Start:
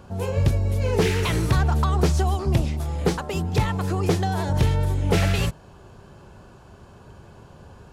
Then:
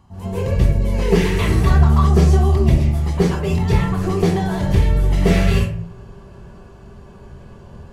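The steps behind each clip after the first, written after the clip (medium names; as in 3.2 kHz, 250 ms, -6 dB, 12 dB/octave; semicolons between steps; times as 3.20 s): reverberation RT60 0.50 s, pre-delay 131 ms, DRR -11 dB; trim -9.5 dB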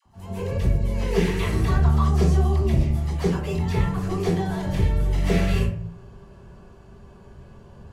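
phase dispersion lows, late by 57 ms, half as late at 730 Hz; trim -6 dB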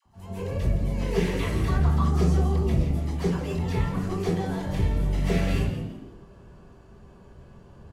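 frequency-shifting echo 168 ms, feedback 30%, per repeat +100 Hz, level -11 dB; trim -3.5 dB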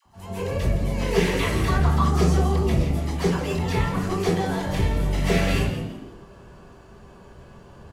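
bass shelf 390 Hz -7 dB; trim +8 dB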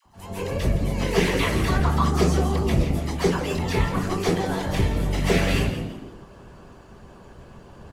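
harmonic-percussive split harmonic -8 dB; trim +4.5 dB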